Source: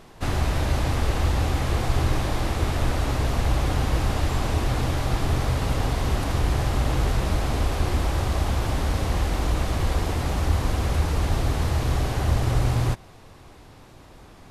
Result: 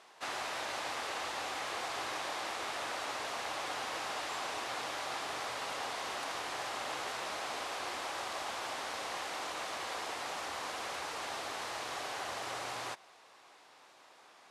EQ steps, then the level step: HPF 730 Hz 12 dB/oct; LPF 9200 Hz 12 dB/oct; -5.0 dB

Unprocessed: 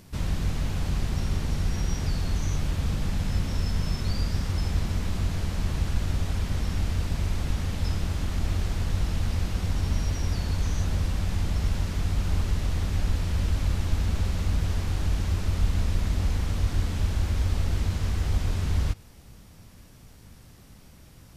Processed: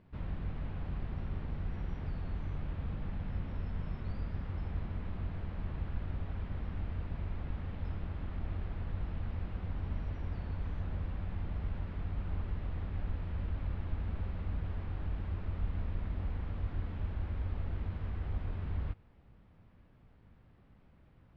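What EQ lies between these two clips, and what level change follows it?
air absorption 450 m; low shelf 410 Hz -3.5 dB; high shelf 4700 Hz -9 dB; -7.5 dB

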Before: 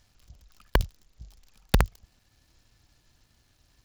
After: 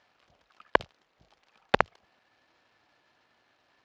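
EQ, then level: BPF 600–2900 Hz; tilt -2 dB/oct; +7.0 dB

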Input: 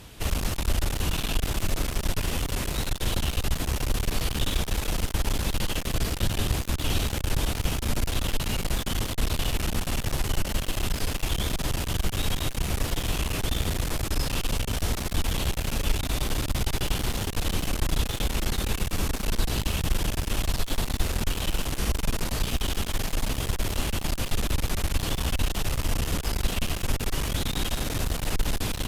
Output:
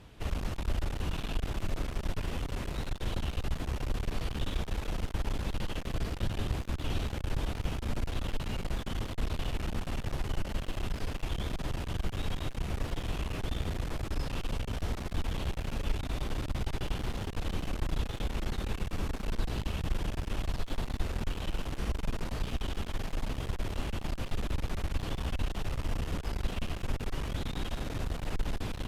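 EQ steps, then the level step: LPF 2100 Hz 6 dB/oct; -6.0 dB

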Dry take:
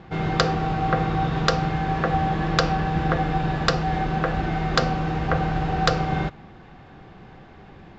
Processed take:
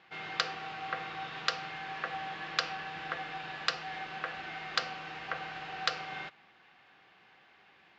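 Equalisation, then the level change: band-pass 3000 Hz, Q 1.1; bell 3600 Hz -3.5 dB 0.24 oct; -3.0 dB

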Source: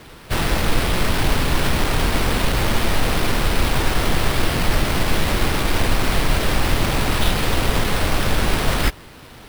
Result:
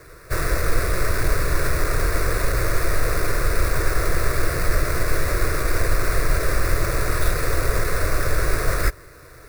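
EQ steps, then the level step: fixed phaser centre 840 Hz, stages 6; 0.0 dB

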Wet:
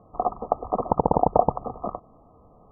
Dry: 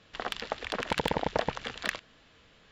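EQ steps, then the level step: brick-wall FIR low-pass 1300 Hz; air absorption 380 m; bell 730 Hz +10.5 dB 0.21 oct; +9.0 dB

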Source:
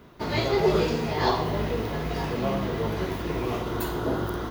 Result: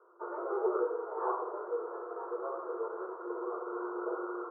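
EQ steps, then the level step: rippled Chebyshev high-pass 340 Hz, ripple 9 dB; Chebyshev low-pass 1400 Hz, order 6; -2.5 dB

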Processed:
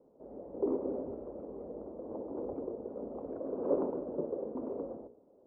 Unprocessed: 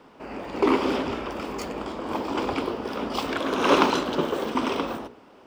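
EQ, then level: ladder low-pass 630 Hz, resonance 50%; -5.0 dB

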